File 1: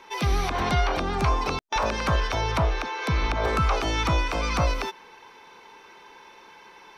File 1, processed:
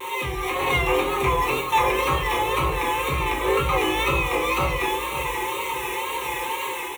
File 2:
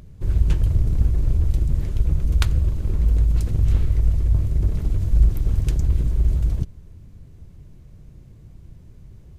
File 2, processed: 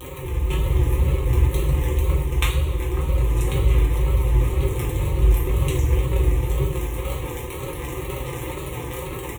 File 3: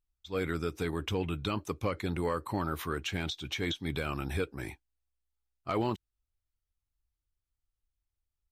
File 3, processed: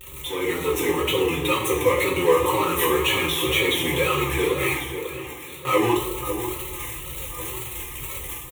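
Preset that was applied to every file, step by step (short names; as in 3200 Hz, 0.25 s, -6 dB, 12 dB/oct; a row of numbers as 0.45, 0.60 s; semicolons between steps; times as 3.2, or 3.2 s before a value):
zero-crossing step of -25.5 dBFS; reverb removal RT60 0.74 s; HPF 110 Hz 12 dB/oct; gate with hold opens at -33 dBFS; comb 5.6 ms, depth 47%; on a send: echo with dull and thin repeats by turns 0.546 s, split 1500 Hz, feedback 58%, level -9 dB; on the sum: AGC gain up to 5 dB; fixed phaser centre 1000 Hz, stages 8; two-slope reverb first 0.63 s, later 2.9 s, from -17 dB, DRR -4 dB; vibrato 2 Hz 64 cents; match loudness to -23 LUFS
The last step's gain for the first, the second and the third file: -5.0, 0.0, -0.5 dB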